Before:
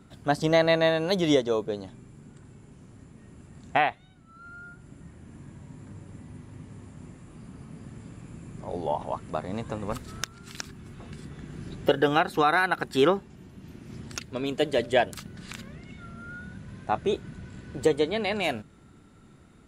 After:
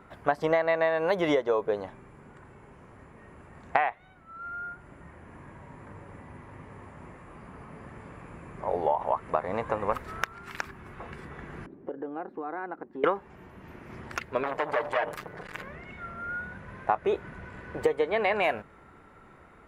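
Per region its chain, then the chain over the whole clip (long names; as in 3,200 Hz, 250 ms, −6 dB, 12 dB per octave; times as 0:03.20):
0:11.66–0:13.04: resonant band-pass 280 Hz, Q 3 + downward compressor 3 to 1, threshold −36 dBFS
0:14.43–0:15.63: comb filter 6.6 ms, depth 94% + downward compressor 8 to 1, threshold −25 dBFS + saturating transformer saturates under 1,900 Hz
whole clip: octave-band graphic EQ 125/250/500/1,000/2,000/4,000/8,000 Hz −5/−5/+6/+9/+8/−7/−10 dB; downward compressor 10 to 1, threshold −21 dBFS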